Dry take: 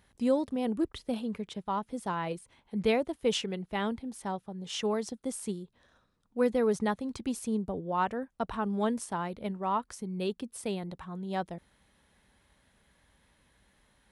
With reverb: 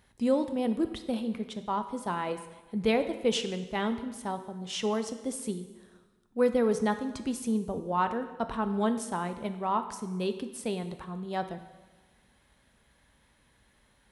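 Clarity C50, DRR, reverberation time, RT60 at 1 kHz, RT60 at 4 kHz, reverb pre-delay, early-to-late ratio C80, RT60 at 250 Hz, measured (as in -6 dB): 11.0 dB, 8.5 dB, 1.2 s, 1.2 s, 1.1 s, 4 ms, 12.5 dB, 1.3 s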